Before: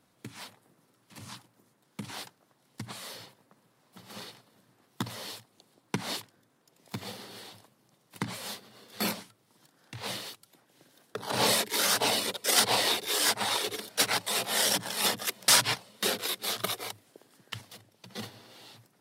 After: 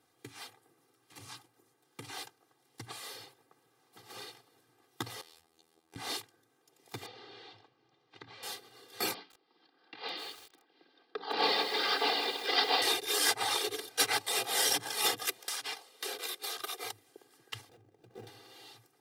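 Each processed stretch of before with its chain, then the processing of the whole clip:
5.21–5.96 s: compression, threshold -52 dBFS + robot voice 81.1 Hz
7.06–8.43 s: low-pass 4.5 kHz 24 dB/octave + compression 4:1, threshold -45 dBFS
9.14–12.82 s: Chebyshev band-pass 170–4800 Hz, order 5 + bit-crushed delay 158 ms, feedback 55%, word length 7-bit, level -6 dB
15.39–16.84 s: high-pass 340 Hz + compression 10:1, threshold -31 dBFS + hard clipper -24 dBFS
17.69–18.27 s: median filter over 41 samples + upward compressor, threshold -49 dBFS
whole clip: high-pass 130 Hz 6 dB/octave; comb 2.5 ms, depth 85%; trim -4.5 dB

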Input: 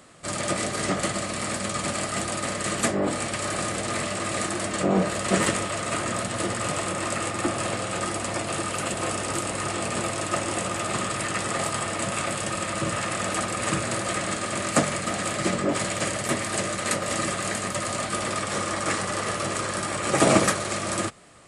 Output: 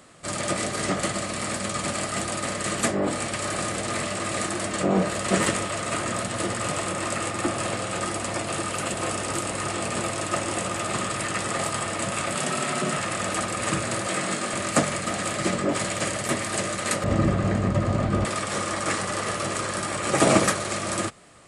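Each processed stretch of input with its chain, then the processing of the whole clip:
12.35–12.97 s: frequency shift +44 Hz + level flattener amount 50%
14.07–14.54 s: high-pass 130 Hz 24 dB/octave + doubling 21 ms -6 dB
17.04–18.25 s: low-pass 9.2 kHz 24 dB/octave + tilt EQ -4.5 dB/octave
whole clip: none

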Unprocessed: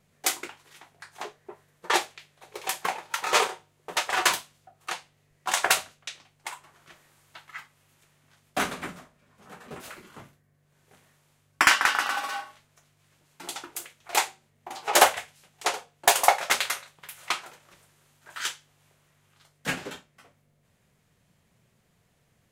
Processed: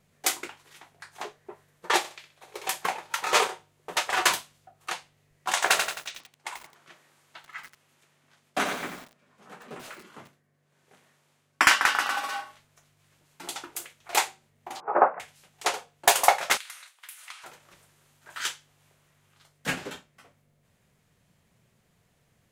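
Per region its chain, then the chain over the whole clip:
1.98–2.64 s: bass shelf 140 Hz -6 dB + flutter echo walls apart 10.8 m, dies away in 0.38 s
5.53–11.63 s: high-pass 170 Hz + treble shelf 11 kHz -8.5 dB + bit-crushed delay 88 ms, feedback 55%, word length 7-bit, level -5 dB
14.80–15.20 s: Chebyshev band-pass 170–1300 Hz, order 3 + careless resampling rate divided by 8×, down none, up filtered
16.57–17.44 s: high-pass 1.3 kHz + compression 10:1, threshold -39 dBFS + peaking EQ 9.6 kHz +5 dB 0.35 oct
whole clip: none

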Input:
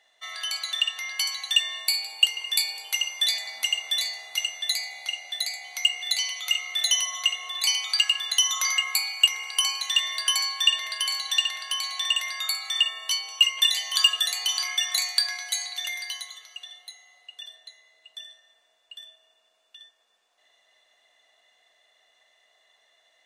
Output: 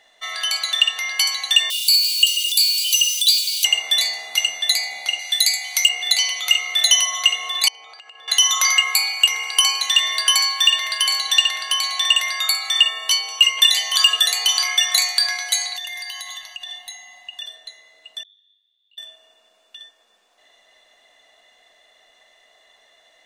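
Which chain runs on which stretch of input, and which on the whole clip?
1.70–3.65 s: jump at every zero crossing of -26.5 dBFS + steep high-pass 2.6 kHz 96 dB/octave + comb 1.3 ms, depth 66%
5.19–5.89 s: high-pass 900 Hz + treble shelf 4.1 kHz +10.5 dB
7.68–8.28 s: band-pass filter 450 Hz, Q 1.3 + compression 8:1, threshold -47 dBFS
10.35–11.07 s: block-companded coder 7-bit + high-pass 590 Hz
15.75–17.41 s: comb 1.1 ms, depth 97% + compression, threshold -36 dBFS
18.23–18.98 s: band-pass filter 3.6 kHz, Q 16 + compression 10:1, threshold -56 dBFS + detune thickener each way 49 cents
whole clip: bass shelf 370 Hz +9.5 dB; loudness maximiser +9 dB; trim -1 dB

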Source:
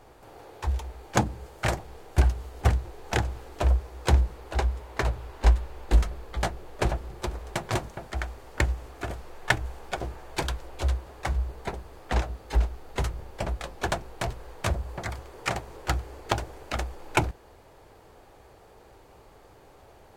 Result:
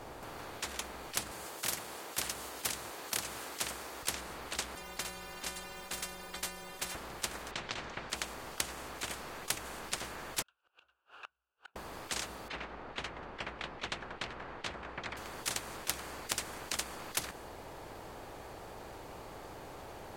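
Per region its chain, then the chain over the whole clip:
1.31–4.03 s: high-pass 320 Hz + treble shelf 5.4 kHz +5.5 dB
4.75–6.95 s: inharmonic resonator 180 Hz, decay 0.39 s, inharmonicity 0.008 + spectrum-flattening compressor 2:1
7.51–8.10 s: compressor with a negative ratio -31 dBFS + distance through air 160 m
10.42–11.76 s: inverted gate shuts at -31 dBFS, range -36 dB + two resonant band-passes 2 kHz, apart 0.91 oct + three bands compressed up and down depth 40%
12.48–15.17 s: low-pass 2.3 kHz + delay 186 ms -22 dB
whole clip: dynamic bell 9.3 kHz, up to +4 dB, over -57 dBFS, Q 1.3; spectrum-flattening compressor 10:1; trim -6.5 dB

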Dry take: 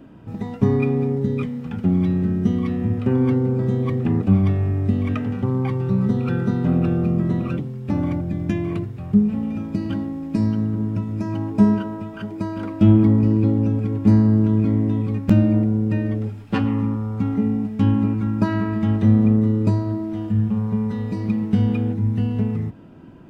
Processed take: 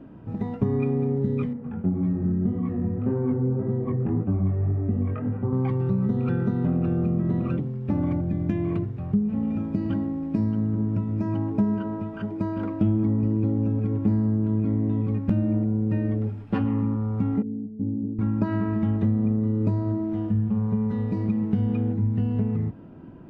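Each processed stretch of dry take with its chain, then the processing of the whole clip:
1.53–5.53 s: low-pass 1.7 kHz + chorus 1.8 Hz, delay 17.5 ms, depth 5.4 ms
17.42–18.19 s: inverse Chebyshev low-pass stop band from 1.8 kHz, stop band 70 dB + tilt EQ +4 dB/octave
whole clip: compression 4:1, threshold -20 dBFS; low-pass 1.3 kHz 6 dB/octave

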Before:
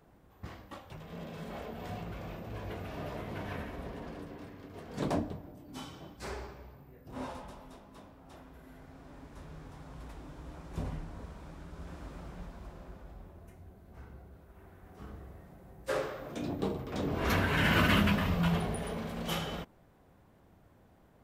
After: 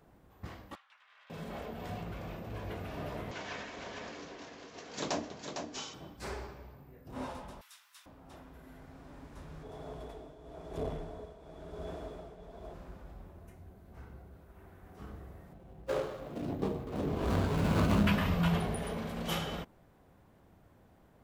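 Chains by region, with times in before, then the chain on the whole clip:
0.75–1.30 s: high-pass 1.3 kHz 24 dB/octave + tape spacing loss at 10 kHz 23 dB
3.31–5.94 s: RIAA curve recording + careless resampling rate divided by 3×, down none, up filtered + delay 455 ms -6 dB
7.61–8.06 s: high-pass 1.4 kHz 24 dB/octave + treble shelf 3.1 kHz +10.5 dB
9.63–12.74 s: tremolo triangle 1 Hz, depth 75% + hard clipper -37 dBFS + small resonant body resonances 440/640/3400 Hz, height 17 dB
15.53–18.07 s: median filter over 25 samples + doubling 19 ms -12 dB
whole clip: none

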